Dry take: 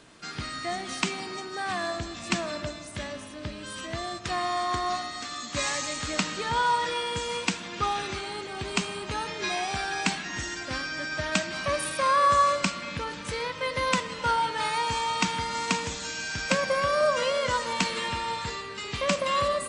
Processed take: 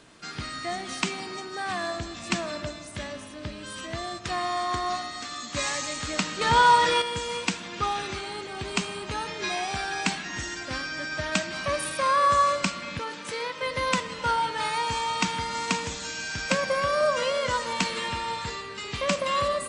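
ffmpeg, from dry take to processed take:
-filter_complex "[0:a]asettb=1/sr,asplit=3[s0][s1][s2];[s0]atrim=end=6.414[s3];[s1]atrim=start=6.41:end=7.02,asetpts=PTS-STARTPTS,afade=t=in:d=0.004:c=qsin,afade=t=out:st=0.606:d=0.004:c=qsin,acontrast=81[s4];[s2]atrim=start=7.016[s5];[s3][s4]acrossfade=d=0.004:c1=hsin:c2=qsin[s6];[s6][s5]acrossfade=d=0.004:c1=qsin:c2=hsin,asettb=1/sr,asplit=3[s7][s8][s9];[s7]atrim=end=12.994[s10];[s8]atrim=start=12.99:end=13.62,asetpts=PTS-STARTPTS,afade=t=in:d=0.004:c=qsin,afade=t=out:st=0.626:d=0.004:c=qsin,highpass=230[s11];[s9]atrim=start=13.616[s12];[s10][s11]acrossfade=d=0.004:c1=hsin:c2=qsin[s13];[s13][s12]acrossfade=d=0.004:c1=qsin:c2=hsin"

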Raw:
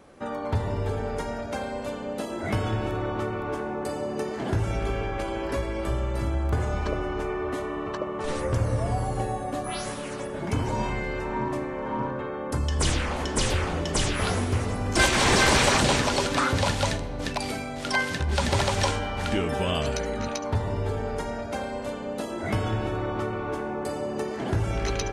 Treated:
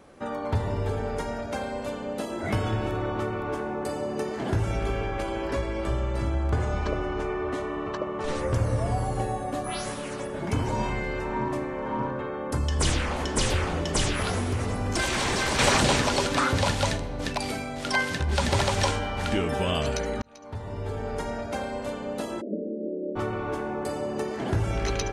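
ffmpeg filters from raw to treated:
-filter_complex "[0:a]asettb=1/sr,asplit=3[s0][s1][s2];[s0]atrim=end=5.494[s3];[s1]atrim=start=5.49:end=8.47,asetpts=PTS-STARTPTS,afade=t=in:d=0.004:c=qsin,afade=t=out:st=2.976:d=0.004:c=qsin,lowpass=8500[s4];[s2]atrim=start=8.466[s5];[s3][s4]acrossfade=d=0.004:c1=hsin:c2=qsin[s6];[s6][s5]acrossfade=d=0.004:c1=qsin:c2=hsin,asettb=1/sr,asplit=3[s7][s8][s9];[s7]atrim=end=14.144[s10];[s8]atrim=start=14.14:end=15.59,asetpts=PTS-STARTPTS,afade=t=in:d=0.004:c=qsin,afade=t=out:st=1.446:d=0.004:c=qsin,acompressor=threshold=0.0794:ratio=6:attack=3.2:release=140:knee=1:detection=peak[s11];[s9]atrim=start=15.586[s12];[s10][s11]acrossfade=d=0.004:c1=hsin:c2=qsin[s13];[s13][s12]acrossfade=d=0.004:c1=qsin:c2=hsin,asplit=3[s14][s15][s16];[s14]afade=t=out:st=22.4:d=0.02[s17];[s15]asuperpass=centerf=330:order=20:qfactor=0.79,afade=t=in:st=22.4:d=0.02,afade=t=out:st=23.15:d=0.02[s18];[s16]afade=t=in:st=23.15:d=0.02[s19];[s17][s18][s19]amix=inputs=3:normalize=0,asplit=2[s20][s21];[s20]atrim=end=20.22,asetpts=PTS-STARTPTS,afade=t=out:st=20.216:d=0.004:c=hsin[s22];[s21]atrim=start=20.22,asetpts=PTS-STARTPTS,afade=t=in:d=1.05[s23];[s22][s23]concat=n=2:v=0:a=1"

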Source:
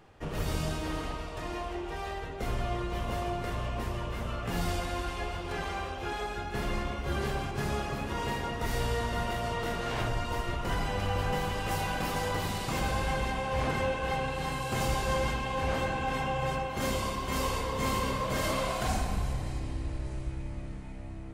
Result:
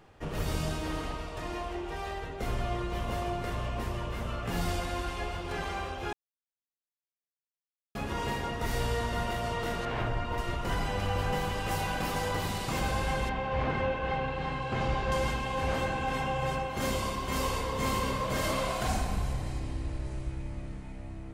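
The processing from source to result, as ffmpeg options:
-filter_complex "[0:a]asettb=1/sr,asplit=3[s0][s1][s2];[s0]atrim=end=9.854[s3];[s1]atrim=start=9.85:end=10.38,asetpts=PTS-STARTPTS,afade=t=in:d=0.004:c=qsin,afade=t=out:st=0.526:d=0.004:c=qsin,bass=f=250:g=0,treble=f=4000:g=-13[s4];[s2]atrim=start=10.376[s5];[s3][s4]acrossfade=d=0.004:c1=hsin:c2=qsin[s6];[s6][s5]acrossfade=d=0.004:c1=qsin:c2=hsin,asettb=1/sr,asplit=3[s7][s8][s9];[s7]atrim=end=13.294[s10];[s8]atrim=start=13.29:end=15.12,asetpts=PTS-STARTPTS,afade=t=in:d=0.004:c=qsin,afade=t=out:st=1.826:d=0.004:c=qsin,lowpass=3100[s11];[s9]atrim=start=15.116[s12];[s10][s11]acrossfade=d=0.004:c1=hsin:c2=qsin[s13];[s13][s12]acrossfade=d=0.004:c1=qsin:c2=hsin,asplit=3[s14][s15][s16];[s14]atrim=end=6.13,asetpts=PTS-STARTPTS,afade=t=out:st=6.126:d=0.004:c=hsin[s17];[s15]atrim=start=6.13:end=7.95,asetpts=PTS-STARTPTS,volume=0[s18];[s16]atrim=start=7.95,asetpts=PTS-STARTPTS,afade=t=in:d=0.004:c=hsin[s19];[s17][s18][s19]concat=n=3:v=0:a=1"

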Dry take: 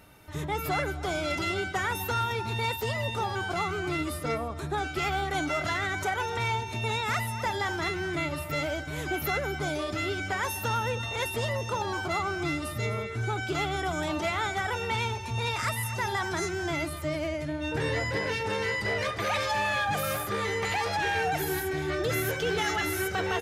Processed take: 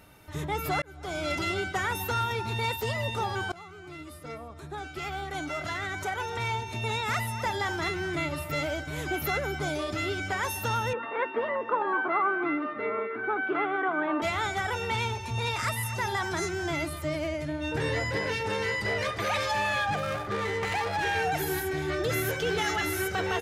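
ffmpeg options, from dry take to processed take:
-filter_complex "[0:a]asettb=1/sr,asplit=3[s0][s1][s2];[s0]atrim=end=10.934[s3];[s1]atrim=start=10.93:end=14.22,asetpts=PTS-STARTPTS,afade=t=in:d=0.004:c=qsin,afade=t=out:st=3.286:d=0.004:c=qsin,highpass=f=250:w=0.5412,highpass=f=250:w=1.3066,equalizer=f=270:t=q:w=4:g=7,equalizer=f=460:t=q:w=4:g=4,equalizer=f=1100:t=q:w=4:g=8,equalizer=f=1600:t=q:w=4:g=6,lowpass=f=2300:w=0.5412,lowpass=f=2300:w=1.3066[s4];[s2]atrim=start=14.216[s5];[s3][s4]acrossfade=d=0.004:c1=hsin:c2=qsin[s6];[s6][s5]acrossfade=d=0.004:c1=qsin:c2=hsin,asettb=1/sr,asplit=3[s7][s8][s9];[s7]atrim=end=19.864[s10];[s8]atrim=start=19.86:end=21.05,asetpts=PTS-STARTPTS,afade=t=in:d=0.004:c=qsin,afade=t=out:st=1.186:d=0.004:c=qsin,adynamicsmooth=sensitivity=5.5:basefreq=1300[s11];[s9]atrim=start=21.046[s12];[s10][s11]acrossfade=d=0.004:c1=hsin:c2=qsin[s13];[s13][s12]acrossfade=d=0.004:c1=qsin:c2=hsin,asplit=3[s14][s15][s16];[s14]atrim=end=0.82,asetpts=PTS-STARTPTS,afade=t=out:st=0.816:d=0.004:c=hsin[s17];[s15]atrim=start=0.82:end=3.52,asetpts=PTS-STARTPTS,afade=t=in:d=0.46,afade=t=out:st=2.696:d=0.004:c=hsin:silence=0.125893[s18];[s16]atrim=start=3.52,asetpts=PTS-STARTPTS,afade=t=in:d=3.73:silence=0.125893[s19];[s17][s18][s19]concat=n=3:v=0:a=1"

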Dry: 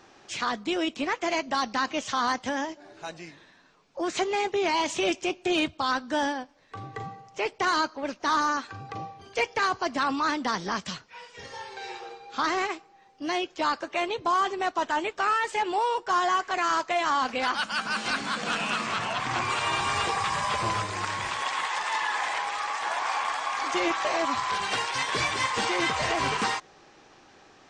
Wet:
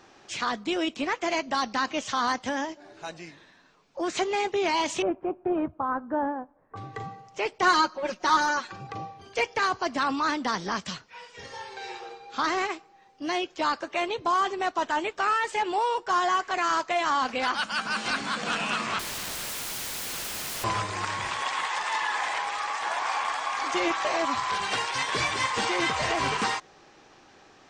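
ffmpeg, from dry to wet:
-filter_complex "[0:a]asettb=1/sr,asplit=3[s0][s1][s2];[s0]atrim=end=5.024[s3];[s1]atrim=start=5.02:end=6.76,asetpts=PTS-STARTPTS,afade=t=in:d=0.004:c=qsin,afade=t=out:st=1.736:d=0.004:c=qsin,lowpass=f=1300:w=0.5412,lowpass=f=1300:w=1.3066[s4];[s2]atrim=start=6.756[s5];[s3][s4]acrossfade=d=0.004:c1=hsin:c2=qsin[s6];[s6][s5]acrossfade=d=0.004:c1=qsin:c2=hsin,asettb=1/sr,asplit=3[s7][s8][s9];[s7]atrim=end=7.624[s10];[s8]atrim=start=7.62:end=8.87,asetpts=PTS-STARTPTS,afade=t=in:d=0.004:c=qsin,afade=t=out:st=1.246:d=0.004:c=qsin,aecho=1:1:5.5:0.88,atrim=end_sample=55125[s11];[s9]atrim=start=8.866[s12];[s10][s11]acrossfade=d=0.004:c1=hsin:c2=qsin[s13];[s13][s12]acrossfade=d=0.004:c1=qsin:c2=hsin,asettb=1/sr,asplit=3[s14][s15][s16];[s14]atrim=end=18.994[s17];[s15]atrim=start=18.99:end=20.64,asetpts=PTS-STARTPTS,afade=t=in:d=0.004:c=qsin,afade=t=out:st=1.646:d=0.004:c=qsin,aeval=exprs='(mod(29.9*val(0)+1,2)-1)/29.9':c=same[s18];[s16]atrim=start=20.636[s19];[s17][s18]acrossfade=d=0.004:c1=hsin:c2=qsin[s20];[s20][s19]acrossfade=d=0.004:c1=qsin:c2=hsin"

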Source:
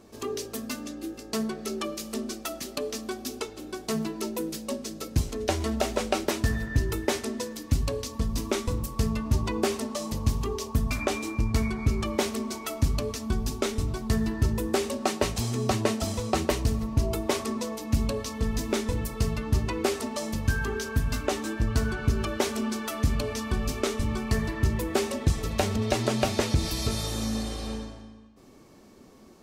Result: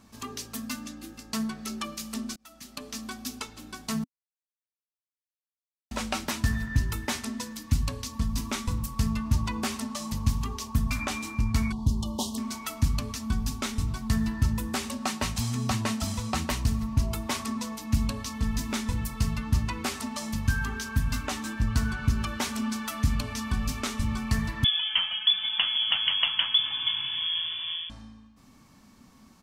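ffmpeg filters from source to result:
-filter_complex "[0:a]asettb=1/sr,asplit=3[s0][s1][s2];[s0]atrim=end=11.724[s3];[s1]atrim=start=11.72:end=12.38,asetpts=PTS-STARTPTS,afade=t=in:d=0.004:c=qsin,afade=t=out:st=0.656:d=0.004:c=qsin,asuperstop=centerf=1800:order=12:qfactor=0.9[s4];[s2]atrim=start=12.376[s5];[s3][s4]acrossfade=d=0.004:c1=hsin:c2=qsin[s6];[s6][s5]acrossfade=d=0.004:c1=qsin:c2=hsin,asettb=1/sr,asplit=3[s7][s8][s9];[s7]atrim=end=24.644[s10];[s8]atrim=start=24.64:end=27.9,asetpts=PTS-STARTPTS,afade=t=in:d=0.004:c=qsin,afade=t=out:st=3.256:d=0.004:c=qsin,lowpass=f=3000:t=q:w=0.5098,lowpass=f=3000:t=q:w=0.6013,lowpass=f=3000:t=q:w=0.9,lowpass=f=3000:t=q:w=2.563,afreqshift=-3500[s11];[s9]atrim=start=27.896[s12];[s10][s11]acrossfade=d=0.004:c1=hsin:c2=qsin[s13];[s13][s12]acrossfade=d=0.004:c1=qsin:c2=hsin,asplit=4[s14][s15][s16][s17];[s14]atrim=end=2.36,asetpts=PTS-STARTPTS,afade=t=out:st=2.356:d=0.004:c=hsin[s18];[s15]atrim=start=2.36:end=4.04,asetpts=PTS-STARTPTS,afade=t=in:d=0.68,afade=t=out:st=1.676:d=0.004:c=hsin[s19];[s16]atrim=start=4.04:end=5.91,asetpts=PTS-STARTPTS,volume=0[s20];[s17]atrim=start=5.91,asetpts=PTS-STARTPTS,afade=t=in:d=0.004:c=hsin[s21];[s18][s19][s20][s21]concat=n=4:v=0:a=1,firequalizer=gain_entry='entry(250,0);entry(360,-16);entry(940,0)':delay=0.05:min_phase=1"

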